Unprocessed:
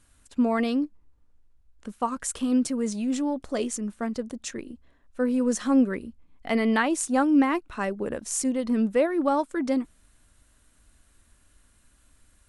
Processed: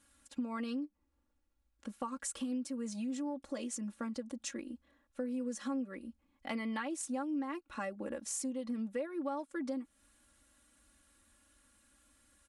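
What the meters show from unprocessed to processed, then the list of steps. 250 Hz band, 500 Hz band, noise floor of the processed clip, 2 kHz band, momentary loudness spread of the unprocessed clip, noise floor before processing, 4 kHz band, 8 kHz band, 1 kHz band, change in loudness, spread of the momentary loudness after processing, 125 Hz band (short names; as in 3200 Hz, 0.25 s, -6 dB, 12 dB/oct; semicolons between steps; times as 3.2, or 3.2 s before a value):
-13.5 dB, -14.5 dB, -78 dBFS, -13.5 dB, 13 LU, -62 dBFS, -10.5 dB, -10.0 dB, -14.0 dB, -13.5 dB, 10 LU, n/a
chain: HPF 150 Hz 6 dB/oct; comb 3.6 ms, depth 85%; compressor 4:1, threshold -31 dBFS, peak gain reduction 16 dB; gain -6 dB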